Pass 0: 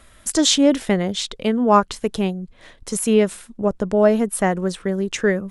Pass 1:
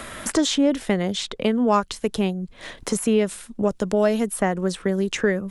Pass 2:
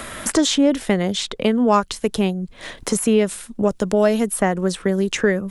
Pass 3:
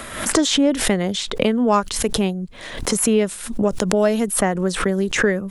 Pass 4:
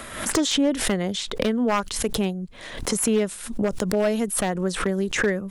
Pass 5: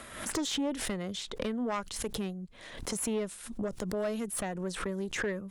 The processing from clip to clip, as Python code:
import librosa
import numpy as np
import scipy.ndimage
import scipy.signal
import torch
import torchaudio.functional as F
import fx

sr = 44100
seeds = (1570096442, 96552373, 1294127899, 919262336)

y1 = fx.band_squash(x, sr, depth_pct=70)
y1 = y1 * librosa.db_to_amplitude(-3.0)
y2 = fx.high_shelf(y1, sr, hz=9900.0, db=4.0)
y2 = y2 * librosa.db_to_amplitude(3.0)
y3 = fx.pre_swell(y2, sr, db_per_s=74.0)
y3 = y3 * librosa.db_to_amplitude(-1.0)
y4 = np.minimum(y3, 2.0 * 10.0 ** (-9.5 / 20.0) - y3)
y4 = y4 * librosa.db_to_amplitude(-4.0)
y5 = fx.tube_stage(y4, sr, drive_db=15.0, bias=0.3)
y5 = y5 * librosa.db_to_amplitude(-8.5)